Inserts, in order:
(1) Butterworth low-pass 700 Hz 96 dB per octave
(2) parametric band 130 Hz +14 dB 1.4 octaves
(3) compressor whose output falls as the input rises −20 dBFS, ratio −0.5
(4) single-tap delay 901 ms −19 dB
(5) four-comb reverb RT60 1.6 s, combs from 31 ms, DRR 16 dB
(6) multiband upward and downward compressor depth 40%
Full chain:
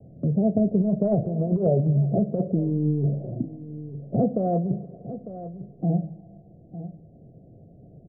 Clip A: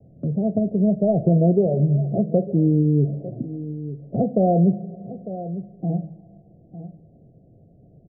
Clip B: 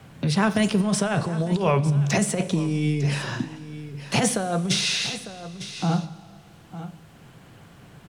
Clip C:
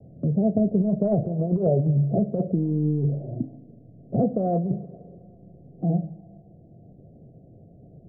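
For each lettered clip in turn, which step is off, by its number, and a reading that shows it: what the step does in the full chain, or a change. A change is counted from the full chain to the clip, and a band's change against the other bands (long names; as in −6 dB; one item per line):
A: 3, change in integrated loudness +3.0 LU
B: 1, 1 kHz band +7.5 dB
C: 4, change in momentary loudness spread −6 LU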